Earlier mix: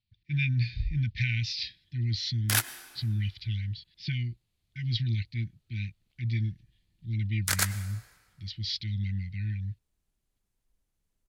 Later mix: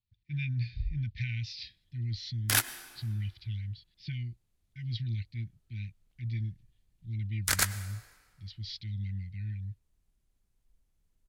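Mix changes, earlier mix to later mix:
speech -9.0 dB; master: add low shelf 130 Hz +7.5 dB

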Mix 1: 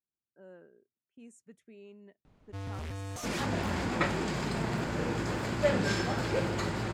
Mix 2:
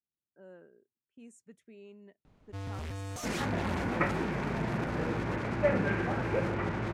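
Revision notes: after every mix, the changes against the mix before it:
second sound: add steep low-pass 2600 Hz 48 dB/oct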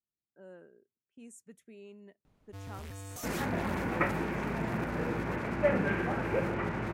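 speech: send +7.5 dB; first sound -5.5 dB; master: remove air absorption 52 m

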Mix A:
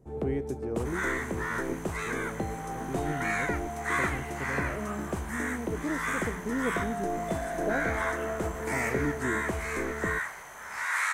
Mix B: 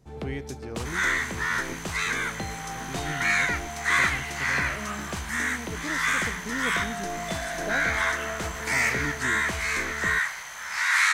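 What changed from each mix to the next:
master: remove EQ curve 170 Hz 0 dB, 390 Hz +6 dB, 4600 Hz -16 dB, 8600 Hz -5 dB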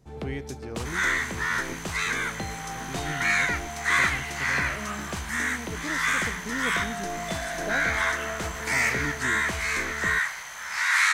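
none

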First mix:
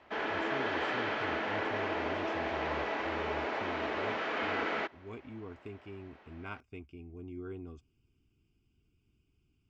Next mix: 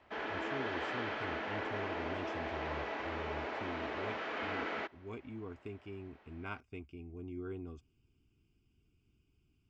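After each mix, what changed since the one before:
background -5.0 dB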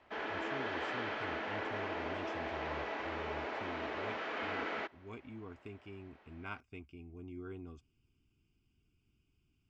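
speech: add bell 440 Hz -4 dB 1.3 oct; master: add bell 66 Hz -3 dB 2.9 oct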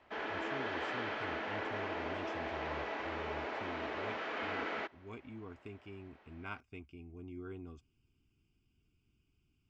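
none

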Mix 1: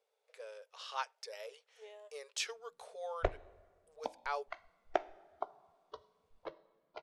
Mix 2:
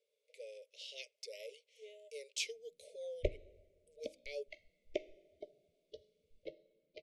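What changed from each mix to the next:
master: add Chebyshev band-stop 610–2100 Hz, order 5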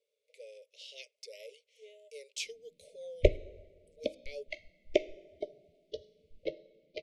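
background +11.5 dB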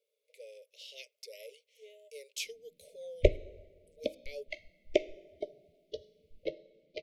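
master: remove LPF 9700 Hz 24 dB/oct

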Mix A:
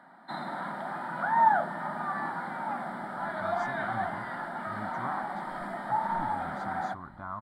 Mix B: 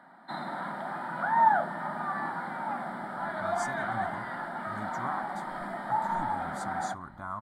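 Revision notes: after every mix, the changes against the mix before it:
speech: remove air absorption 210 m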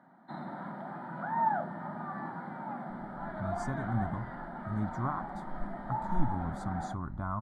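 background -7.5 dB; master: add tilt -3.5 dB/oct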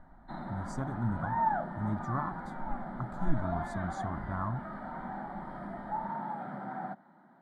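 speech: entry -2.90 s

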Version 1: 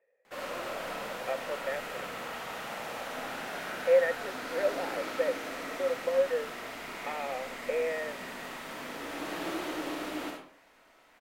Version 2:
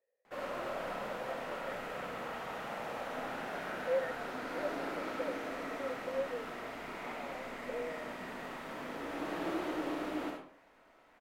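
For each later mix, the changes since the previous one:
speech -9.5 dB; master: add high shelf 2400 Hz -11 dB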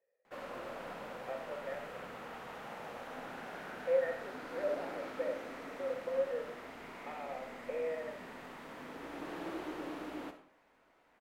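speech: send on; background: send -11.0 dB

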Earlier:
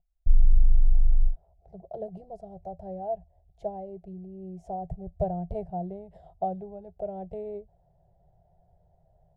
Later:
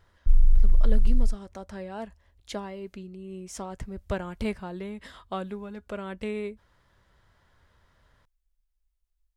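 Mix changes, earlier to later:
speech: entry -1.10 s; master: remove EQ curve 110 Hz 0 dB, 170 Hz +10 dB, 250 Hz -29 dB, 360 Hz -3 dB, 510 Hz -3 dB, 720 Hz +13 dB, 1100 Hz -28 dB

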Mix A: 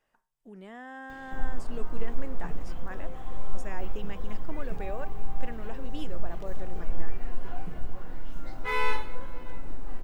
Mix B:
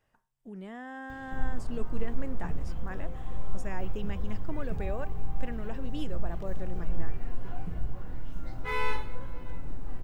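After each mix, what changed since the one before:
background -3.5 dB; master: add bell 80 Hz +14.5 dB 1.9 oct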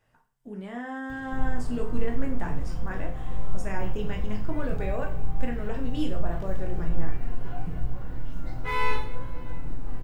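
speech: send on; background: send +11.0 dB

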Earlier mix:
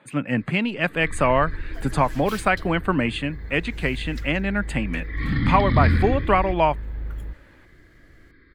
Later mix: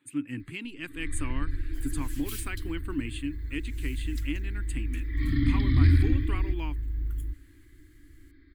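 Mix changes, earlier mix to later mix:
speech -6.5 dB; master: add EQ curve 100 Hz 0 dB, 200 Hz -18 dB, 290 Hz +4 dB, 610 Hz -29 dB, 970 Hz -16 dB, 3000 Hz -5 dB, 5400 Hz -5 dB, 8400 Hz +6 dB

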